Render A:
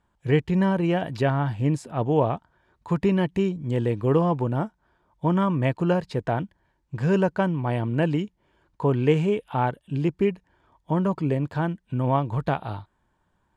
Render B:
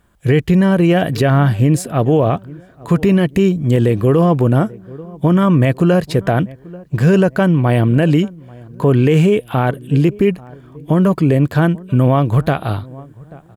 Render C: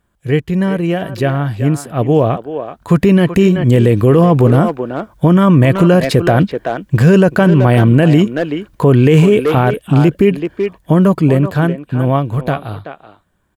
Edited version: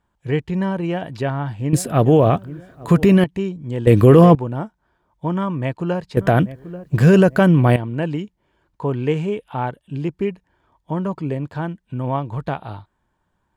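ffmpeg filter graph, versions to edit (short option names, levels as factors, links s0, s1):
-filter_complex "[1:a]asplit=2[s0][s1];[0:a]asplit=4[s2][s3][s4][s5];[s2]atrim=end=1.732[s6];[s0]atrim=start=1.728:end=3.242[s7];[s3]atrim=start=3.238:end=3.872[s8];[2:a]atrim=start=3.868:end=4.352[s9];[s4]atrim=start=4.348:end=6.172[s10];[s1]atrim=start=6.168:end=7.762[s11];[s5]atrim=start=7.758[s12];[s6][s7]acrossfade=d=0.004:c1=hsin:c2=hsin[s13];[s13][s8]acrossfade=d=0.004:c1=hsin:c2=hsin[s14];[s14][s9]acrossfade=d=0.004:c1=hsin:c2=hsin[s15];[s15][s10]acrossfade=d=0.004:c1=hsin:c2=hsin[s16];[s16][s11]acrossfade=d=0.004:c1=hsin:c2=hsin[s17];[s17][s12]acrossfade=d=0.004:c1=hsin:c2=hsin"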